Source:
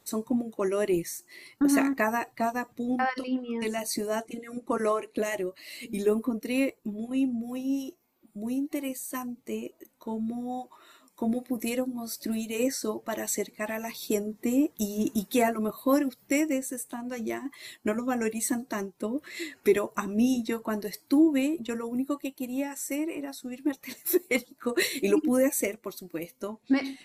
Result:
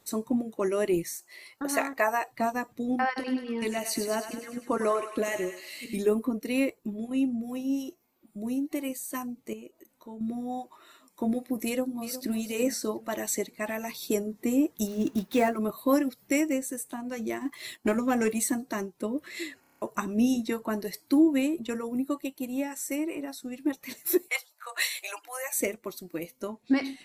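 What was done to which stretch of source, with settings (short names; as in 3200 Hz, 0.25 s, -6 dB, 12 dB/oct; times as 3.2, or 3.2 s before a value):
1.16–2.31 resonant low shelf 400 Hz -9.5 dB, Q 1.5
3.06–5.96 thinning echo 0.101 s, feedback 67%, high-pass 960 Hz, level -7 dB
9.53–10.21 compressor 1.5:1, threshold -56 dBFS
11.65–12.37 echo throw 0.36 s, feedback 25%, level -12 dB
14.87–15.57 median filter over 5 samples
17.41–18.44 sample leveller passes 1
19.61 stutter in place 0.03 s, 7 plays
24.28–25.53 steep high-pass 690 Hz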